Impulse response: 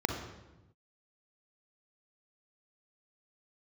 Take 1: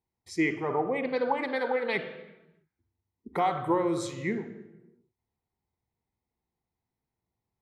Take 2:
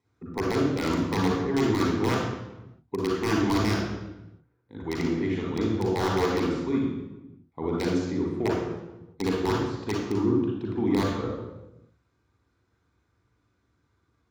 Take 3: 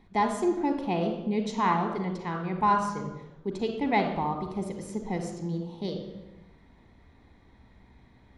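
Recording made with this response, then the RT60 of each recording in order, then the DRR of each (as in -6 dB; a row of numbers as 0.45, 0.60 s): 3; 1.0, 1.0, 1.0 s; 8.0, -3.0, 4.0 dB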